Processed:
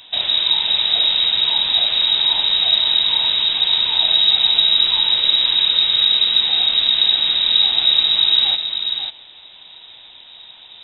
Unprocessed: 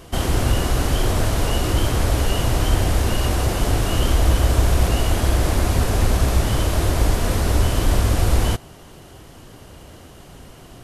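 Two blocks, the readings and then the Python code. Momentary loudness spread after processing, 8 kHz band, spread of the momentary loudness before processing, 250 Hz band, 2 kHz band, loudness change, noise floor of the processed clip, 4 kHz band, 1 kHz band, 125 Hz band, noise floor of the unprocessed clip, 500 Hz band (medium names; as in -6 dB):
3 LU, under -40 dB, 3 LU, under -15 dB, +1.5 dB, +7.5 dB, -43 dBFS, +20.0 dB, -6.0 dB, under -25 dB, -43 dBFS, -14.0 dB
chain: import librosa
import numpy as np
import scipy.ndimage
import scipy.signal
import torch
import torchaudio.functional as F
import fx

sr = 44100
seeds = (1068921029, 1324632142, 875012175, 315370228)

y = fx.freq_invert(x, sr, carrier_hz=3800)
y = y + 10.0 ** (-7.0 / 20.0) * np.pad(y, (int(541 * sr / 1000.0), 0))[:len(y)]
y = y * 10.0 ** (-1.0 / 20.0)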